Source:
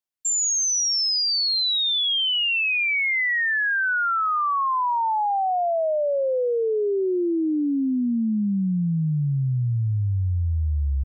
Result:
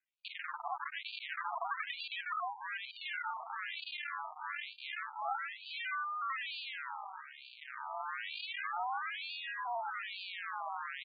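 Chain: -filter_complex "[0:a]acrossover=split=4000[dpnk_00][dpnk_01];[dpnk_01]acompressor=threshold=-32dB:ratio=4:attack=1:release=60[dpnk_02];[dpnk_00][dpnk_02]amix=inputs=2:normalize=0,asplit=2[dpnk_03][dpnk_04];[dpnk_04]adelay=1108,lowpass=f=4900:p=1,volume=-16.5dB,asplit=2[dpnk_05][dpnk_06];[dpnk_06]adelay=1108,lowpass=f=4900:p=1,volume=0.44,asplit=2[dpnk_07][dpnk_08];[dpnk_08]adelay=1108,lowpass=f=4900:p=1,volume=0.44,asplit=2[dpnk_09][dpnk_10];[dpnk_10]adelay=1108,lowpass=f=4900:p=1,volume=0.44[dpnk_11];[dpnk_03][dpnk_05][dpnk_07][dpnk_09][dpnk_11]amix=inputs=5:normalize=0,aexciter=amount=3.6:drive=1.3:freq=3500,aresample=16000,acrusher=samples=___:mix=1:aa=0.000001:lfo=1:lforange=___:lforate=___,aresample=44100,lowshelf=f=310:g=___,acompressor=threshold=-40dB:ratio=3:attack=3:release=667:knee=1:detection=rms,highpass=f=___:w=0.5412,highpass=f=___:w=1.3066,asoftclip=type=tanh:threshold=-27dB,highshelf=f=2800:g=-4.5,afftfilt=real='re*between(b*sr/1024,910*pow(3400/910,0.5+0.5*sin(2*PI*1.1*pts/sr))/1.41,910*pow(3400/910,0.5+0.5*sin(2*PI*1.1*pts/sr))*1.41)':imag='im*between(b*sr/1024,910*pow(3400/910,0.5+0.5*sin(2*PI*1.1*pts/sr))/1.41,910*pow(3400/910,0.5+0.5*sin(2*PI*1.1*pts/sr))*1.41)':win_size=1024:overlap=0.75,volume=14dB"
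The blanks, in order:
35, 35, 0.29, -6, 200, 200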